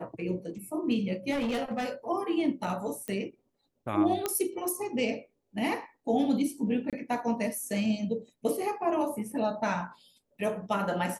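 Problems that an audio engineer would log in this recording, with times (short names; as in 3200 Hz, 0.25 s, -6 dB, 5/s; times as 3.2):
1.31–1.89 clipped -26.5 dBFS
3.08 pop -21 dBFS
4.26 pop -14 dBFS
6.9–6.93 gap 27 ms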